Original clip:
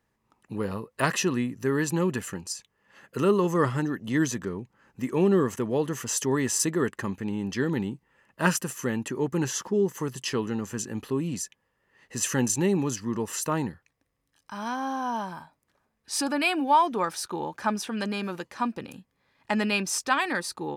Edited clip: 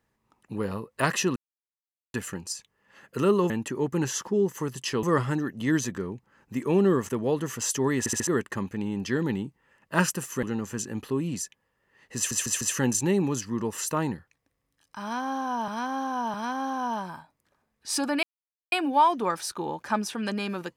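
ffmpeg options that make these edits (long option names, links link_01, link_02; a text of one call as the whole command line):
ffmpeg -i in.wav -filter_complex "[0:a]asplit=16[link_01][link_02][link_03][link_04][link_05][link_06][link_07][link_08][link_09][link_10][link_11][link_12][link_13][link_14][link_15][link_16];[link_01]atrim=end=1.36,asetpts=PTS-STARTPTS,afade=type=out:start_time=1.356:duration=0.004:curve=hsin[link_17];[link_02]atrim=start=1.36:end=2.14,asetpts=PTS-STARTPTS,volume=0[link_18];[link_03]atrim=start=2.14:end=3.502,asetpts=PTS-STARTPTS,afade=type=in:duration=0.004:curve=hsin[link_19];[link_04]atrim=start=8.898:end=10.432[link_20];[link_05]atrim=start=3.498:end=6.532[link_21];[link_06]atrim=start=6.458:end=6.532[link_22];[link_07]atrim=start=6.458:end=6.532[link_23];[link_08]atrim=start=6.458:end=6.532[link_24];[link_09]atrim=start=6.738:end=8.902[link_25];[link_10]atrim=start=10.428:end=12.312[link_26];[link_11]atrim=start=12.158:end=12.312[link_27];[link_12]atrim=start=12.158:end=12.312[link_28];[link_13]atrim=start=12.158:end=15.232[link_29];[link_14]atrim=start=14.568:end=15.232[link_30];[link_15]atrim=start=14.568:end=16.46,asetpts=PTS-STARTPTS,afade=type=out:start_time=1.888:duration=0.004:curve=hsin,apad=pad_dur=0.49[link_31];[link_16]atrim=start=16.46,asetpts=PTS-STARTPTS,afade=type=in:duration=0.004:curve=hsin[link_32];[link_17][link_18][link_19]concat=n=3:v=0:a=1[link_33];[link_33][link_20]acrossfade=duration=0.004:curve1=hsin:curve2=hsin[link_34];[link_34][link_21]acrossfade=duration=0.004:curve1=hsin:curve2=hsin[link_35];[link_35][link_22]acrossfade=duration=0.004:curve1=hsin:curve2=hsin[link_36];[link_36][link_23]acrossfade=duration=0.004:curve1=hsin:curve2=hsin[link_37];[link_37][link_24]acrossfade=duration=0.004:curve1=hsin:curve2=hsin[link_38];[link_38][link_25]acrossfade=duration=0.004:curve1=hsin:curve2=hsin[link_39];[link_39][link_26]acrossfade=duration=0.004:curve1=hsin:curve2=hsin[link_40];[link_40][link_27]acrossfade=duration=0.004:curve1=hsin:curve2=hsin[link_41];[link_41][link_28]acrossfade=duration=0.004:curve1=hsin:curve2=hsin[link_42];[link_42][link_29]acrossfade=duration=0.004:curve1=hsin:curve2=hsin[link_43];[link_43][link_30]acrossfade=duration=0.004:curve1=hsin:curve2=hsin[link_44];[link_31][link_32]concat=n=2:v=0:a=1[link_45];[link_44][link_45]acrossfade=duration=0.004:curve1=hsin:curve2=hsin" out.wav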